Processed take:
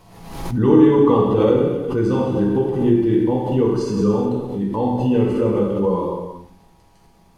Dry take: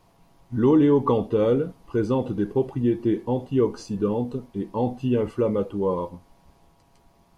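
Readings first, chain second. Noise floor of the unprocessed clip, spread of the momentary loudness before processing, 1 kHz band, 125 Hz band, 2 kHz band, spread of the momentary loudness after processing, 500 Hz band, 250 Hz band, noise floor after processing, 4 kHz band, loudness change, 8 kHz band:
-59 dBFS, 10 LU, +6.0 dB, +6.5 dB, +6.0 dB, 10 LU, +5.5 dB, +6.5 dB, -53 dBFS, +6.0 dB, +6.0 dB, n/a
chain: non-linear reverb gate 0.45 s falling, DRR -3.5 dB; backwards sustainer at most 56 dB/s

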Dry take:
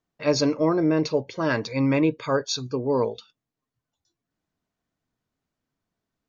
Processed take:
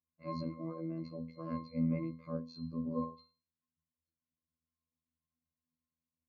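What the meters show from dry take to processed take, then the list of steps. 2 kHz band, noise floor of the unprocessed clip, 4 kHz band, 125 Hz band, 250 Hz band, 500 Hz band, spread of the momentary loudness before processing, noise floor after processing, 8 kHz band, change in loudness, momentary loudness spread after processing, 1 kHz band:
-28.5 dB, under -85 dBFS, -25.5 dB, -11.5 dB, -13.5 dB, -21.0 dB, 6 LU, under -85 dBFS, n/a, -15.5 dB, 9 LU, -15.5 dB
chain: octave resonator C, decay 0.36 s; robotiser 81.6 Hz; gain +3 dB

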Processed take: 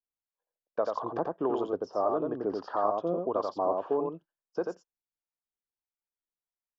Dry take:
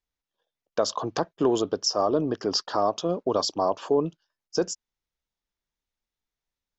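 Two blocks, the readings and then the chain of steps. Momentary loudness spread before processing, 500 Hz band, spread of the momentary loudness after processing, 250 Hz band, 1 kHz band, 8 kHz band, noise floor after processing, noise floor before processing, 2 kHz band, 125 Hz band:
8 LU, -4.0 dB, 9 LU, -6.5 dB, -3.0 dB, n/a, under -85 dBFS, under -85 dBFS, -7.0 dB, -9.5 dB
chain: gate -45 dBFS, range -8 dB; low shelf 240 Hz -11.5 dB; echo 88 ms -3.5 dB; harmonic tremolo 1.6 Hz, depth 50%, crossover 700 Hz; LPF 1200 Hz 12 dB/oct

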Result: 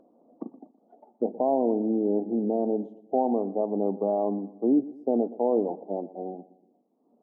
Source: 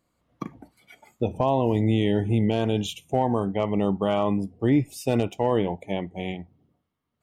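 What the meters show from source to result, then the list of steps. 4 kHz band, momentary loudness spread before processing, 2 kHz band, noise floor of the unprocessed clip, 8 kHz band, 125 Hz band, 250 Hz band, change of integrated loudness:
under -40 dB, 11 LU, under -40 dB, -79 dBFS, under -35 dB, under -15 dB, -2.0 dB, -2.5 dB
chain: elliptic band-pass 230–780 Hz, stop band 50 dB; upward compressor, threshold -46 dBFS; feedback echo 0.12 s, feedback 42%, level -18 dB

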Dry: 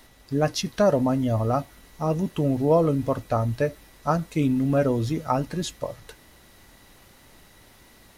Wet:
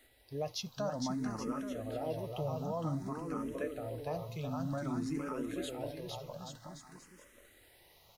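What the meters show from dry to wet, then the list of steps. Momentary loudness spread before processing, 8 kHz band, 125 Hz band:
10 LU, -10.0 dB, -14.5 dB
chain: low shelf 280 Hz -5.5 dB; limiter -18.5 dBFS, peak gain reduction 8.5 dB; requantised 12-bit, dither triangular; bouncing-ball echo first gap 0.46 s, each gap 0.8×, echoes 5; endless phaser +0.53 Hz; gain -8 dB

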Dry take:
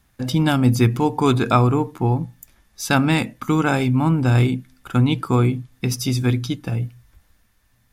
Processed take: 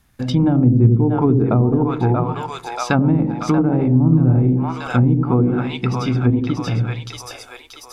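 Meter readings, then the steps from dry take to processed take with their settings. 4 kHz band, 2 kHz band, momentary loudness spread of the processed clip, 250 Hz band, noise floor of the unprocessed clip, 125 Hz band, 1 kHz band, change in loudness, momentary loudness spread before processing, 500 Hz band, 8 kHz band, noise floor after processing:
-4.5 dB, -4.0 dB, 12 LU, +4.0 dB, -62 dBFS, +3.5 dB, -1.0 dB, +2.5 dB, 9 LU, +2.0 dB, n/a, -42 dBFS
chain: split-band echo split 530 Hz, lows 86 ms, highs 0.632 s, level -4 dB; treble ducked by the level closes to 430 Hz, closed at -11.5 dBFS; gain +2 dB

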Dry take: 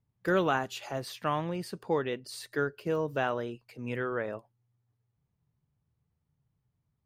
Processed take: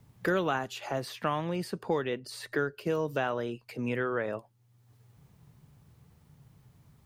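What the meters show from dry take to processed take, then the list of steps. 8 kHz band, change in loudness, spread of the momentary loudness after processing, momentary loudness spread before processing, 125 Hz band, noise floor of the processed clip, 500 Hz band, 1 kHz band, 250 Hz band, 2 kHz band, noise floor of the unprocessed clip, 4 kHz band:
-0.5 dB, 0.0 dB, 7 LU, 10 LU, +0.5 dB, -65 dBFS, 0.0 dB, -0.5 dB, +1.0 dB, +0.5 dB, -81 dBFS, +0.5 dB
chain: three-band squash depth 70%

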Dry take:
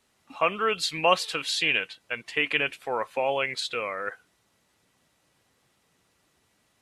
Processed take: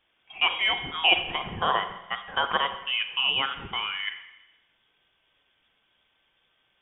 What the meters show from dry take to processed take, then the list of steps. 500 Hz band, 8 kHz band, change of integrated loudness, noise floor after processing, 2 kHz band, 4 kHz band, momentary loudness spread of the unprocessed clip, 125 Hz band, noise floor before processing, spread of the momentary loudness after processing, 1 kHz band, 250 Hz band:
-8.5 dB, under -40 dB, +1.0 dB, -71 dBFS, +0.5 dB, +6.0 dB, 9 LU, +0.5 dB, -70 dBFS, 11 LU, +1.0 dB, -4.0 dB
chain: inverted band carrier 3500 Hz; Schroeder reverb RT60 1 s, combs from 32 ms, DRR 9 dB

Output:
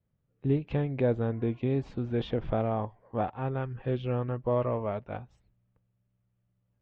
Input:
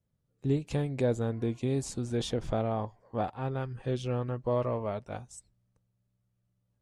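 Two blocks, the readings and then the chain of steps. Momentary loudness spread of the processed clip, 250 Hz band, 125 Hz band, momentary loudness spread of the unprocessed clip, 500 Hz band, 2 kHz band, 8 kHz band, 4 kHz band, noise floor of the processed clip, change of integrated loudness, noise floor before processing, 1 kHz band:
7 LU, +1.5 dB, +1.5 dB, 8 LU, +1.5 dB, +1.5 dB, under -25 dB, -5.5 dB, -77 dBFS, +1.5 dB, -78 dBFS, +1.5 dB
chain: LPF 3000 Hz 24 dB/oct; gain +1.5 dB

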